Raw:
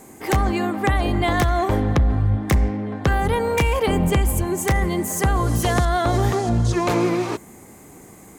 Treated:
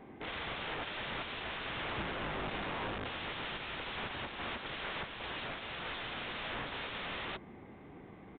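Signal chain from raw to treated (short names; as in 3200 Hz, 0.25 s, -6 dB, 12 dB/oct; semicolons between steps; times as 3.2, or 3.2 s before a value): wrapped overs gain 26 dB; downsampling 8000 Hz; gain -7 dB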